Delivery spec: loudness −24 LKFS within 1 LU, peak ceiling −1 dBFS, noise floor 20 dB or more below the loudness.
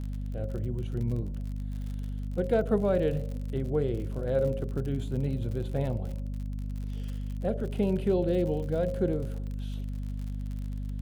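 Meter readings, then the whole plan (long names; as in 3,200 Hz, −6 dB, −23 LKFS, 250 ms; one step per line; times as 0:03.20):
crackle rate 57 per second; mains hum 50 Hz; hum harmonics up to 250 Hz; level of the hum −31 dBFS; integrated loudness −31.5 LKFS; sample peak −14.0 dBFS; target loudness −24.0 LKFS
→ click removal
hum removal 50 Hz, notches 5
level +7.5 dB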